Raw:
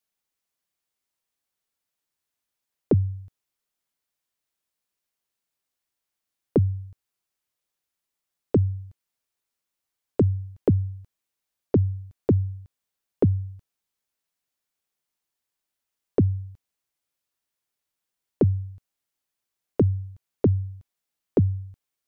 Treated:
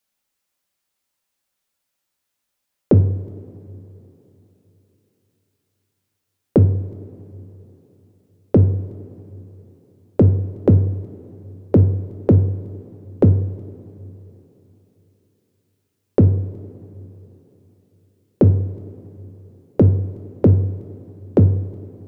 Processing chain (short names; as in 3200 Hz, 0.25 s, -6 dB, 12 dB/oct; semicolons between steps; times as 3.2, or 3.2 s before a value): two-slope reverb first 0.49 s, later 3.7 s, from -17 dB, DRR 5 dB; gain +6 dB